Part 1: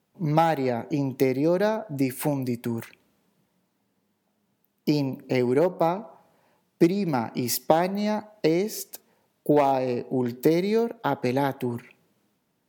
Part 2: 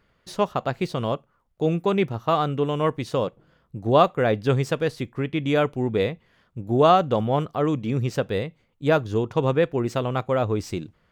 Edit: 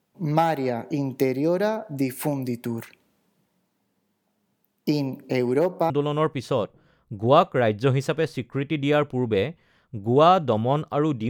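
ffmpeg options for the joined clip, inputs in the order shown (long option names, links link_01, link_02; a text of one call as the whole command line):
ffmpeg -i cue0.wav -i cue1.wav -filter_complex "[0:a]apad=whole_dur=11.29,atrim=end=11.29,atrim=end=5.902[link_01];[1:a]atrim=start=2.528:end=7.92[link_02];[link_01][link_02]acrossfade=duration=0.004:curve1=hsin:curve2=hsin" out.wav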